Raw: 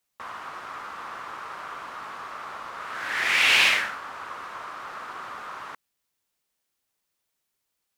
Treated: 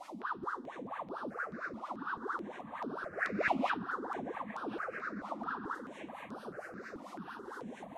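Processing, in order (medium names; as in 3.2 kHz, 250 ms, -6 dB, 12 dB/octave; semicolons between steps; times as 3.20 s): one-bit delta coder 64 kbps, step -25.5 dBFS; in parallel at -4 dB: sample-and-hold 29×; on the sum: wah-wah 4.4 Hz 200–1600 Hz, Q 10; echo whose repeats swap between lows and highs 636 ms, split 1.3 kHz, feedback 73%, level -9.5 dB; stepped phaser 4.6 Hz 430–7100 Hz; trim +5 dB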